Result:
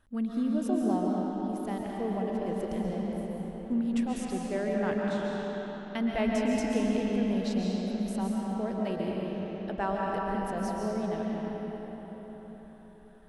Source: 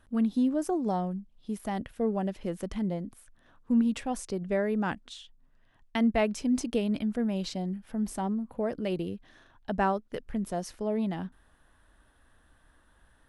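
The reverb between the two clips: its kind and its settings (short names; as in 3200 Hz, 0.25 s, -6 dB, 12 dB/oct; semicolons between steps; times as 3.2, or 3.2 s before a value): digital reverb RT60 4.9 s, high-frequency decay 0.65×, pre-delay 95 ms, DRR -3.5 dB; gain -5 dB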